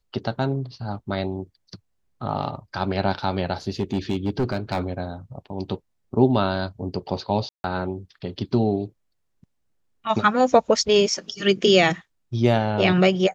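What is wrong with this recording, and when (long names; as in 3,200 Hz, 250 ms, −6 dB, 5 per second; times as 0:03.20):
0:03.79–0:04.79: clipping −17.5 dBFS
0:07.49–0:07.64: drop-out 151 ms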